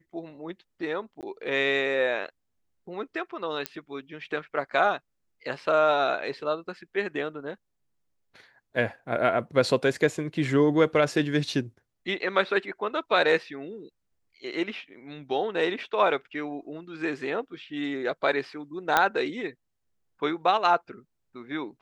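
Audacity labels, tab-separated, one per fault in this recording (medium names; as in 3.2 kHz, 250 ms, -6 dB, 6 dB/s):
1.210000	1.230000	dropout 18 ms
3.660000	3.660000	pop -12 dBFS
18.970000	18.970000	pop -6 dBFS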